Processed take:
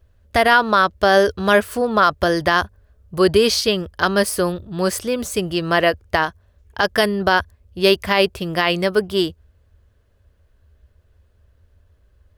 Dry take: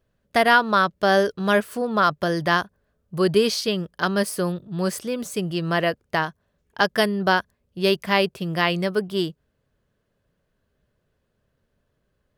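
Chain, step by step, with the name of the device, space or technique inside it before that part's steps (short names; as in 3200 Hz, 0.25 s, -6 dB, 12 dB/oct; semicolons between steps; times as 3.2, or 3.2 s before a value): car stereo with a boomy subwoofer (resonant low shelf 110 Hz +10.5 dB, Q 3; limiter -10.5 dBFS, peak gain reduction 8 dB); gain +6.5 dB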